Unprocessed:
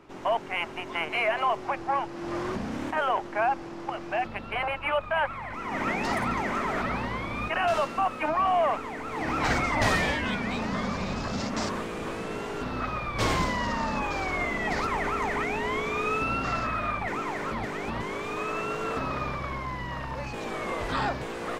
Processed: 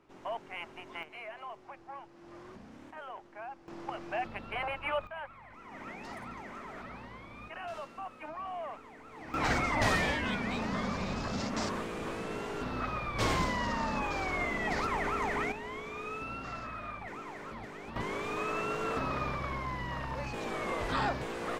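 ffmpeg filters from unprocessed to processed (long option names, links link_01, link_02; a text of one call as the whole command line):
ffmpeg -i in.wav -af "asetnsamples=nb_out_samples=441:pad=0,asendcmd='1.03 volume volume -18.5dB;3.68 volume volume -6dB;5.07 volume volume -16dB;9.34 volume volume -4dB;15.52 volume volume -12dB;17.96 volume volume -3dB',volume=-11.5dB" out.wav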